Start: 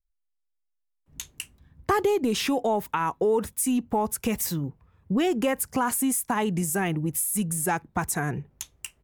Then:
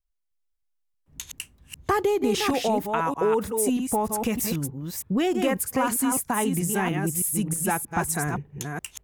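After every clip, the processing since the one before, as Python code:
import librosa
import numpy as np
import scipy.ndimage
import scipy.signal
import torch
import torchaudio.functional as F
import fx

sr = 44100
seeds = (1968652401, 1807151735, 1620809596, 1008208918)

y = fx.reverse_delay(x, sr, ms=314, wet_db=-5.0)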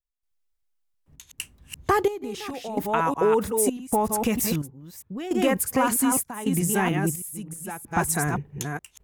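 y = fx.step_gate(x, sr, bpm=65, pattern='.xxxx.xxx..', floor_db=-12.0, edge_ms=4.5)
y = y * 10.0 ** (2.0 / 20.0)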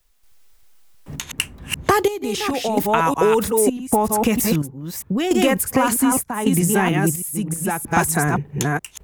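y = fx.band_squash(x, sr, depth_pct=70)
y = y * 10.0 ** (5.5 / 20.0)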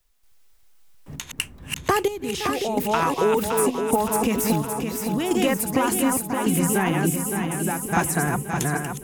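y = fx.echo_feedback(x, sr, ms=566, feedback_pct=57, wet_db=-6.5)
y = y * 10.0 ** (-4.5 / 20.0)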